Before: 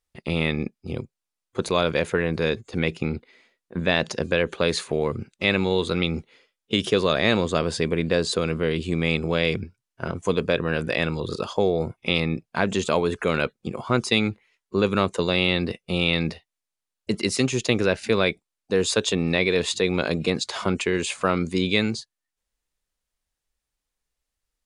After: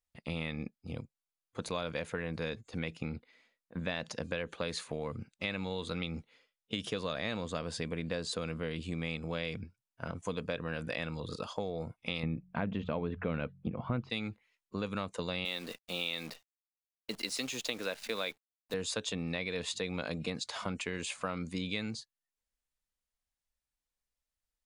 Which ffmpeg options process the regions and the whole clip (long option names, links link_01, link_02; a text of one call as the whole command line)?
ffmpeg -i in.wav -filter_complex "[0:a]asettb=1/sr,asplit=3[link_01][link_02][link_03];[link_01]atrim=end=12.234[link_04];[link_02]atrim=start=12.23:end=14.1,asetpts=PTS-STARTPTS,afade=type=in:duration=0.004:curve=qsin,afade=type=out:start_time=1.866:duration=0.004:curve=qsin,lowpass=frequency=3200:width=0.5412,lowpass=frequency=3200:width=1.3066,lowshelf=frequency=460:gain=11.5,bandreject=frequency=45.47:width_type=h:width=4,bandreject=frequency=90.94:width_type=h:width=4,bandreject=frequency=136.41:width_type=h:width=4,bandreject=frequency=181.88:width_type=h:width=4[link_05];[link_03]atrim=start=14.096[link_06];[link_04][link_05]acrossfade=duration=0.004:curve1=hsin:curve2=qsin[link_07];[link_07][link_06]acrossfade=duration=0.004:curve1=qsin:curve2=hsin,asettb=1/sr,asplit=3[link_08][link_09][link_10];[link_08]atrim=end=15.454[link_11];[link_09]atrim=start=15.45:end=18.74,asetpts=PTS-STARTPTS,afade=type=in:duration=0.004:curve=qsin,afade=type=out:start_time=3.286:duration=0.004:curve=qsin,highpass=300,equalizer=frequency=3800:width=2:gain=5,acrusher=bits=7:dc=4:mix=0:aa=0.000001[link_12];[link_10]atrim=start=18.736[link_13];[link_11][link_12]acrossfade=duration=0.004:curve1=hsin:curve2=qsin[link_14];[link_14][link_13]acrossfade=duration=0.004:curve1=qsin:curve2=hsin,equalizer=frequency=380:width=6.4:gain=-12,acompressor=threshold=-23dB:ratio=4,volume=-9dB" out.wav